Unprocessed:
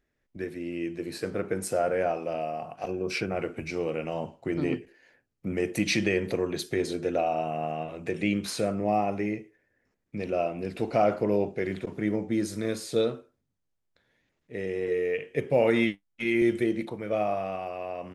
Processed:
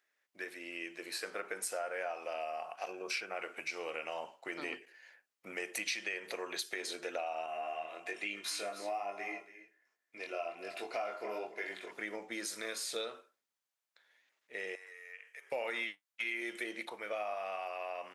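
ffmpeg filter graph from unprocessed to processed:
-filter_complex "[0:a]asettb=1/sr,asplit=3[s0][s1][s2];[s0]atrim=end=7.464[s3];[s1]atrim=start=7.46:end=11.91,asetpts=PTS-STARTPTS,afade=t=in:d=0.004:c=qsin,afade=t=out:st=4.446:d=0.004:c=qsin,flanger=delay=20:depth=4.4:speed=1.2,aecho=1:1:2.9:0.33,atrim=end_sample=196245,aecho=1:1:281:0.168,atrim=end_sample=196245[s4];[s2]atrim=start=11.906[s5];[s3][s4]acrossfade=d=0.004:c1=hsin:c2=qsin[s6];[s6][s5]acrossfade=d=0.004:c1=qsin:c2=hsin,asettb=1/sr,asplit=3[s7][s8][s9];[s7]atrim=end=14.754[s10];[s8]atrim=start=14.75:end=15.52,asetpts=PTS-STARTPTS,afade=t=in:d=0.004:c=qsin,afade=t=out:st=0.766:d=0.004:c=qsin,highpass=1300,equalizer=f=3100:w=1.4:g=-11.5,acompressor=threshold=0.00316:ratio=2.5:attack=3.2:release=140:knee=1:detection=peak[s11];[s9]atrim=start=15.516[s12];[s10][s11]acrossfade=d=0.004:c1=hsin:c2=qsin[s13];[s13][s12]acrossfade=d=0.004:c1=qsin:c2=hsin,highpass=940,acompressor=threshold=0.0126:ratio=4,volume=1.33"

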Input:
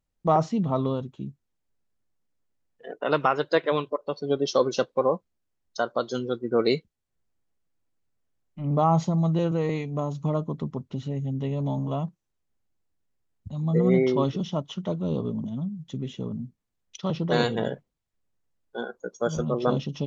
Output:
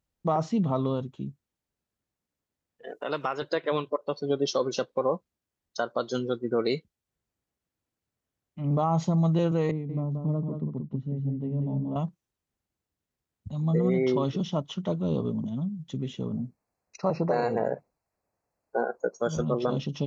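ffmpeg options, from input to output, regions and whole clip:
-filter_complex "[0:a]asettb=1/sr,asplit=3[s0][s1][s2];[s0]atrim=end=2.884[s3];[s1]atrim=start=2.88:end=3.42,asetpts=PTS-STARTPTS,afade=t=in:d=0.004:c=qsin,afade=t=out:st=0.536:d=0.004:c=qsin,bass=f=250:g=-3,treble=f=4000:g=8,acompressor=threshold=0.0141:ratio=1.5:attack=3.2:release=140:knee=1:detection=peak[s4];[s2]atrim=start=3.416[s5];[s3][s4]acrossfade=d=0.004:c1=hsin:c2=qsin[s6];[s6][s5]acrossfade=d=0.004:c1=qsin:c2=hsin,asettb=1/sr,asplit=3[s7][s8][s9];[s7]atrim=end=9.714[s10];[s8]atrim=start=9.71:end=11.96,asetpts=PTS-STARTPTS,afade=t=in:d=0.004:c=qsin,afade=t=out:st=2.246:d=0.004:c=qsin,bandpass=f=180:t=q:w=0.88,aecho=1:1:180:0.531,atrim=end_sample=99225[s11];[s9]atrim=start=11.956[s12];[s10][s11]acrossfade=d=0.004:c1=hsin:c2=qsin[s13];[s13][s12]acrossfade=d=0.004:c1=qsin:c2=hsin,asettb=1/sr,asplit=3[s14][s15][s16];[s14]atrim=end=16.334[s17];[s15]atrim=start=16.33:end=19.19,asetpts=PTS-STARTPTS,afade=t=in:d=0.004:c=qsin,afade=t=out:st=2.856:d=0.004:c=qsin,acrossover=split=5300[s18][s19];[s19]acompressor=threshold=0.00316:ratio=4:attack=1:release=60[s20];[s18][s20]amix=inputs=2:normalize=0,asuperstop=centerf=3300:order=20:qfactor=2.8,equalizer=f=710:t=o:w=1.6:g=13[s21];[s16]atrim=start=19.186[s22];[s17][s21]acrossfade=d=0.004:c1=hsin:c2=qsin[s23];[s23][s22]acrossfade=d=0.004:c1=qsin:c2=hsin,highpass=41,alimiter=limit=0.168:level=0:latency=1:release=160"

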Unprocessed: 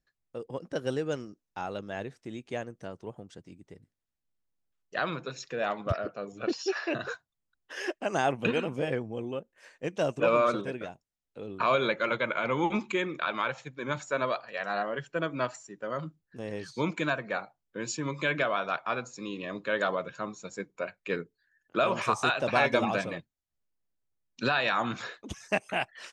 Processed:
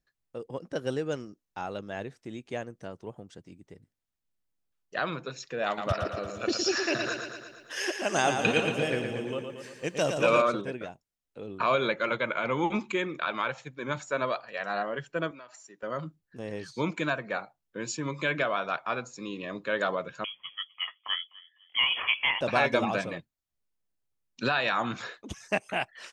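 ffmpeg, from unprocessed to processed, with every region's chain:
-filter_complex "[0:a]asettb=1/sr,asplit=3[s0][s1][s2];[s0]atrim=end=5.664[s3];[s1]atrim=start=5.66:end=10.42,asetpts=PTS-STARTPTS,afade=t=in:d=0.004:c=qsin,afade=t=out:st=4.756:d=0.004:c=qsin,highshelf=f=3000:g=11.5,aecho=1:1:115|230|345|460|575|690|805|920:0.501|0.301|0.18|0.108|0.065|0.039|0.0234|0.014,atrim=end_sample=209916[s4];[s2]atrim=start=10.416[s5];[s3][s4]acrossfade=d=0.004:c1=hsin:c2=qsin[s6];[s6][s5]acrossfade=d=0.004:c1=qsin:c2=hsin,asettb=1/sr,asplit=3[s7][s8][s9];[s7]atrim=end=15.314[s10];[s8]atrim=start=15.31:end=15.83,asetpts=PTS-STARTPTS,afade=t=in:d=0.004:c=qsin,afade=t=out:st=0.516:d=0.004:c=qsin,highpass=f=630:p=1,bandreject=f=7800:w=8.9,acompressor=threshold=0.00562:ratio=6:attack=3.2:release=140:knee=1:detection=peak[s11];[s9]atrim=start=15.826[s12];[s10][s11]acrossfade=d=0.004:c1=hsin:c2=qsin[s13];[s13][s12]acrossfade=d=0.004:c1=qsin:c2=hsin,asettb=1/sr,asplit=3[s14][s15][s16];[s14]atrim=end=20.244[s17];[s15]atrim=start=20.24:end=22.41,asetpts=PTS-STARTPTS,afade=t=in:d=0.004:c=qsin,afade=t=out:st=2.166:d=0.004:c=qsin,asplit=2[s18][s19];[s19]adelay=252,lowpass=f=1400:p=1,volume=0.106,asplit=2[s20][s21];[s21]adelay=252,lowpass=f=1400:p=1,volume=0.34,asplit=2[s22][s23];[s23]adelay=252,lowpass=f=1400:p=1,volume=0.34[s24];[s18][s20][s22][s24]amix=inputs=4:normalize=0,atrim=end_sample=95697,lowpass=f=3000:t=q:w=0.5098,lowpass=f=3000:t=q:w=0.6013,lowpass=f=3000:t=q:w=0.9,lowpass=f=3000:t=q:w=2.563,afreqshift=-3500[s25];[s16]atrim=start=22.406[s26];[s17][s25]acrossfade=d=0.004:c1=hsin:c2=qsin[s27];[s27][s26]acrossfade=d=0.004:c1=qsin:c2=hsin"

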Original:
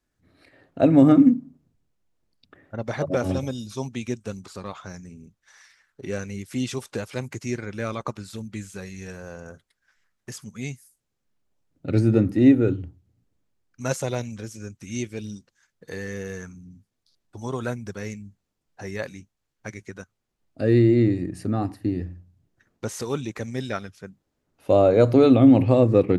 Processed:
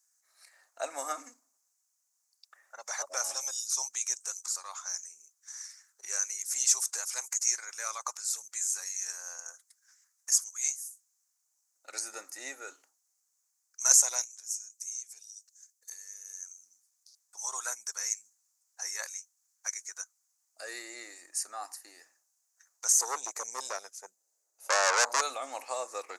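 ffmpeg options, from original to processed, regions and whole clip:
-filter_complex "[0:a]asettb=1/sr,asplit=3[s0][s1][s2];[s0]atrim=end=14.244[s3];[s1]atrim=start=14.24:end=16.57,asetpts=PTS-STARTPTS,afade=t=in:d=0.004:c=qsin,afade=t=out:st=2.326:d=0.004:c=qsin,equalizer=f=890:w=0.31:g=-12.5,acompressor=threshold=0.00794:ratio=12:attack=3.2:release=140:knee=1:detection=peak[s4];[s2]atrim=start=16.566[s5];[s3][s4]acrossfade=d=0.004:c1=hsin:c2=qsin[s6];[s6][s5]acrossfade=d=0.004:c1=qsin:c2=hsin,asettb=1/sr,asplit=3[s7][s8][s9];[s7]atrim=end=22.924[s10];[s8]atrim=start=22.92:end=25.21,asetpts=PTS-STARTPTS,afade=t=in:d=0.004:c=qsin,afade=t=out:st=2.286:d=0.004:c=qsin,lowshelf=f=710:t=q:w=1.5:g=13.5,bandreject=f=5500:w=22,aeval=exprs='(tanh(3.55*val(0)+0.6)-tanh(0.6))/3.55':c=same[s11];[s9]atrim=start=25.206[s12];[s10][s11]acrossfade=d=0.004:c1=hsin:c2=qsin[s13];[s13][s12]acrossfade=d=0.004:c1=qsin:c2=hsin,highpass=f=880:w=0.5412,highpass=f=880:w=1.3066,highshelf=f=4600:t=q:w=3:g=13,volume=0.75"

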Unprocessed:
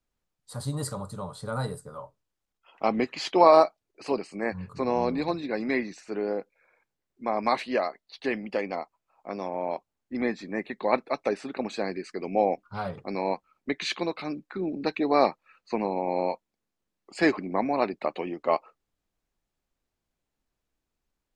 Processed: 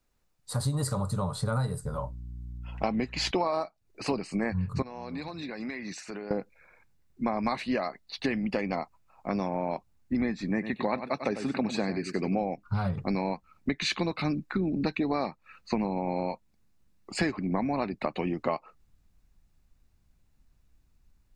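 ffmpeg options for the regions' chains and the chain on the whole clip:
-filter_complex "[0:a]asettb=1/sr,asplit=3[s0][s1][s2];[s0]atrim=end=1.844[s3];[s1]atrim=start=1.84:end=3.31,asetpts=PTS-STARTPTS,afade=t=in:d=0.004:c=qsin,afade=t=out:st=1.466:d=0.004:c=qsin,bandreject=f=1200:w=8,aeval=exprs='val(0)+0.00178*(sin(2*PI*60*n/s)+sin(2*PI*2*60*n/s)/2+sin(2*PI*3*60*n/s)/3+sin(2*PI*4*60*n/s)/4+sin(2*PI*5*60*n/s)/5)':c=same[s4];[s2]atrim=start=3.306[s5];[s3][s4]acrossfade=d=0.004:c1=hsin:c2=qsin[s6];[s6][s5]acrossfade=d=0.004:c1=qsin:c2=hsin,asettb=1/sr,asplit=3[s7][s8][s9];[s7]atrim=end=4.824[s10];[s8]atrim=start=4.82:end=6.31,asetpts=PTS-STARTPTS,afade=t=in:d=0.004:c=qsin,afade=t=out:st=1.486:d=0.004:c=qsin,highpass=56,lowshelf=f=390:g=-11,acompressor=threshold=0.00891:ratio=6:attack=3.2:release=140:knee=1:detection=peak[s11];[s9]atrim=start=6.306[s12];[s10][s11]acrossfade=d=0.004:c1=hsin:c2=qsin[s13];[s13][s12]acrossfade=d=0.004:c1=qsin:c2=hsin,asettb=1/sr,asplit=3[s14][s15][s16];[s14]atrim=end=10.504[s17];[s15]atrim=start=10.5:end=12.43,asetpts=PTS-STARTPTS,afade=t=in:d=0.004:c=qsin,afade=t=out:st=1.926:d=0.004:c=qsin,highpass=69,aecho=1:1:96:0.266,atrim=end_sample=85113[s18];[s16]atrim=start=12.426[s19];[s17][s18]acrossfade=d=0.004:c1=hsin:c2=qsin[s20];[s20][s19]acrossfade=d=0.004:c1=qsin:c2=hsin,bandreject=f=3200:w=15,asubboost=boost=5:cutoff=180,acompressor=threshold=0.0251:ratio=10,volume=2.24"

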